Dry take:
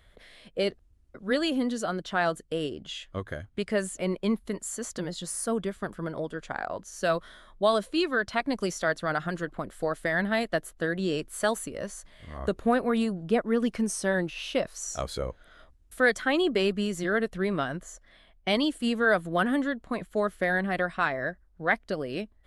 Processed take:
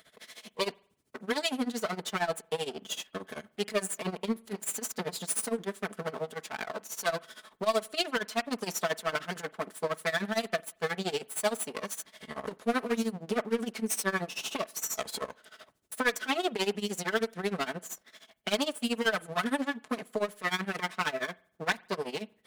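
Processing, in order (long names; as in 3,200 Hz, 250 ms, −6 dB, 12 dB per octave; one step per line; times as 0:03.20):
lower of the sound and its delayed copy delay 4.6 ms
high-pass filter 240 Hz 12 dB per octave
high-shelf EQ 4,400 Hz +7 dB
in parallel at +1.5 dB: downward compressor, threshold −40 dBFS, peak gain reduction 20 dB
on the sum: soft clipping −15.5 dBFS, distortion −19 dB
amplitude tremolo 13 Hz, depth 89%
on a send at −23 dB: convolution reverb, pre-delay 44 ms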